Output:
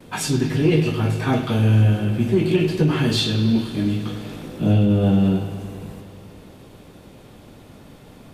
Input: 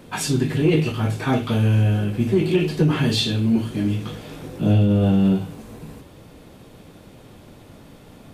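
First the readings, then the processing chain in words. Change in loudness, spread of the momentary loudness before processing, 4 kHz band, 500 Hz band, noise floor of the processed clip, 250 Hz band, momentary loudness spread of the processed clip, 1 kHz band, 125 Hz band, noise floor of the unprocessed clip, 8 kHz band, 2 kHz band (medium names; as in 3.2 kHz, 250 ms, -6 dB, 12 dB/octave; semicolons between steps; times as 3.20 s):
+0.5 dB, 17 LU, +0.5 dB, +0.5 dB, -45 dBFS, +0.5 dB, 14 LU, +0.5 dB, +1.0 dB, -46 dBFS, 0.0 dB, +0.5 dB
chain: gate with hold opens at -38 dBFS; on a send: bucket-brigade echo 101 ms, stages 4096, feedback 78%, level -13 dB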